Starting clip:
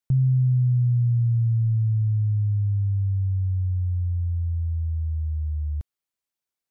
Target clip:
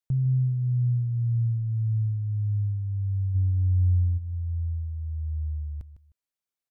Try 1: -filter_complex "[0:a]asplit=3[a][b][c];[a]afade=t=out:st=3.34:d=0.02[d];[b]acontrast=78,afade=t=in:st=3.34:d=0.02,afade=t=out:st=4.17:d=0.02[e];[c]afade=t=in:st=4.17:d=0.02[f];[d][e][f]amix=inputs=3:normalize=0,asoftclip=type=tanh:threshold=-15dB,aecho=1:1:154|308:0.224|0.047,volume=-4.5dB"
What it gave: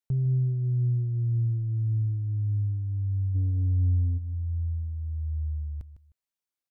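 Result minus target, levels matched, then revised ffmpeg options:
soft clip: distortion +16 dB
-filter_complex "[0:a]asplit=3[a][b][c];[a]afade=t=out:st=3.34:d=0.02[d];[b]acontrast=78,afade=t=in:st=3.34:d=0.02,afade=t=out:st=4.17:d=0.02[e];[c]afade=t=in:st=4.17:d=0.02[f];[d][e][f]amix=inputs=3:normalize=0,asoftclip=type=tanh:threshold=-6dB,aecho=1:1:154|308:0.224|0.047,volume=-4.5dB"

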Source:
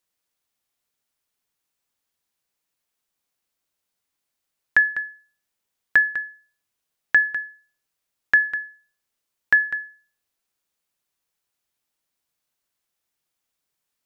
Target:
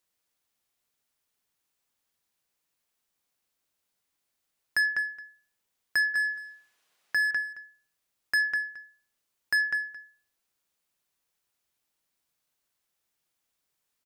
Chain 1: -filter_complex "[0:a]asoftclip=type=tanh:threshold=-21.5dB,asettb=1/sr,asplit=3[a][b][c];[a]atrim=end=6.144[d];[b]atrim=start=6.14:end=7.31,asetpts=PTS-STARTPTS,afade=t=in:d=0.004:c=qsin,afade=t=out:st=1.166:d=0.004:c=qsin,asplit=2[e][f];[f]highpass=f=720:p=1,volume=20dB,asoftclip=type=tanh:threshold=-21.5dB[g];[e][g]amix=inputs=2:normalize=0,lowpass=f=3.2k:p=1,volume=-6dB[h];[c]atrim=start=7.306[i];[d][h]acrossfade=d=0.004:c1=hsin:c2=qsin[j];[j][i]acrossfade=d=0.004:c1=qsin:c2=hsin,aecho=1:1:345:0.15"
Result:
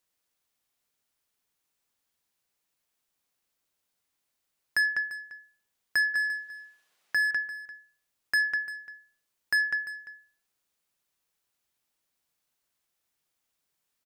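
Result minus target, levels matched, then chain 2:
echo 0.125 s late
-filter_complex "[0:a]asoftclip=type=tanh:threshold=-21.5dB,asettb=1/sr,asplit=3[a][b][c];[a]atrim=end=6.144[d];[b]atrim=start=6.14:end=7.31,asetpts=PTS-STARTPTS,afade=t=in:d=0.004:c=qsin,afade=t=out:st=1.166:d=0.004:c=qsin,asplit=2[e][f];[f]highpass=f=720:p=1,volume=20dB,asoftclip=type=tanh:threshold=-21.5dB[g];[e][g]amix=inputs=2:normalize=0,lowpass=f=3.2k:p=1,volume=-6dB[h];[c]atrim=start=7.306[i];[d][h]acrossfade=d=0.004:c1=hsin:c2=qsin[j];[j][i]acrossfade=d=0.004:c1=qsin:c2=hsin,aecho=1:1:220:0.15"

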